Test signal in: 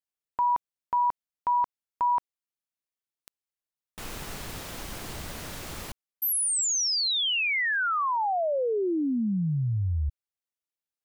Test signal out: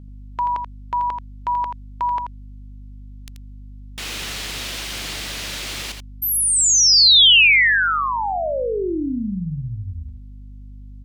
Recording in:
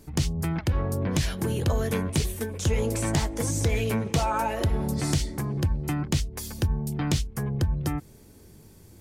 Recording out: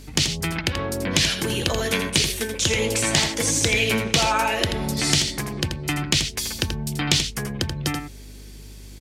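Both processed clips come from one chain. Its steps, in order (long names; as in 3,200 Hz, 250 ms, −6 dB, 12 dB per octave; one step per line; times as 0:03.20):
meter weighting curve D
mains hum 50 Hz, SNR 18 dB
on a send: single-tap delay 83 ms −7.5 dB
on the sum: level +3.5 dB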